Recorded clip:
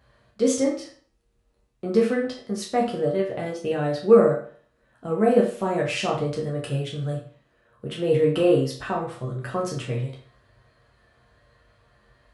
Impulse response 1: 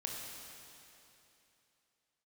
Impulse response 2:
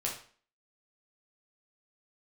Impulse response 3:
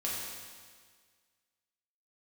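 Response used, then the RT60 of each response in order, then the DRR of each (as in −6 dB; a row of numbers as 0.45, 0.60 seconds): 2; 3.0, 0.45, 1.7 seconds; −1.5, −3.0, −6.0 decibels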